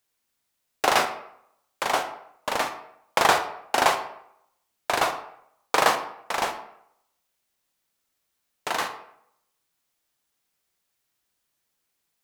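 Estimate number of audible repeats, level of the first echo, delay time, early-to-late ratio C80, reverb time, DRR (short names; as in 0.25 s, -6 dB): none, none, none, 13.0 dB, 0.70 s, 7.5 dB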